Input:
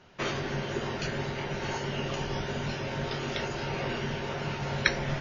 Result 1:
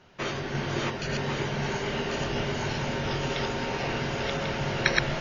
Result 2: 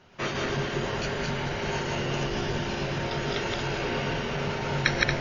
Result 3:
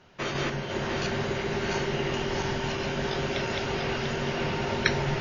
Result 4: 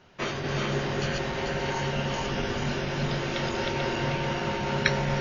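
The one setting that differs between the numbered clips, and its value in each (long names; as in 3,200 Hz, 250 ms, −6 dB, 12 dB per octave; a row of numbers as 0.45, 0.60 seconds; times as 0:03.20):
feedback delay that plays each chunk backwards, delay time: 547, 115, 347, 220 milliseconds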